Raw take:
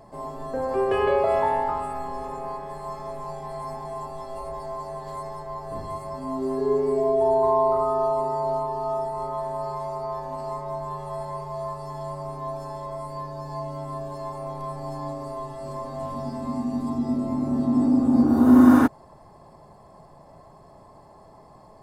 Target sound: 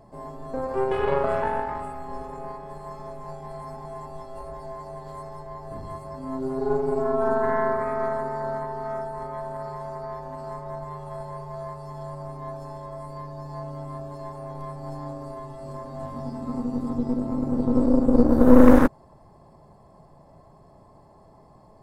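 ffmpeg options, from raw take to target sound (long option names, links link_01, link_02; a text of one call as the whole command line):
ffmpeg -i in.wav -af "lowshelf=frequency=450:gain=6.5,aeval=exprs='1.12*(cos(1*acos(clip(val(0)/1.12,-1,1)))-cos(1*PI/2))+0.447*(cos(4*acos(clip(val(0)/1.12,-1,1)))-cos(4*PI/2))':channel_layout=same,volume=-6dB" out.wav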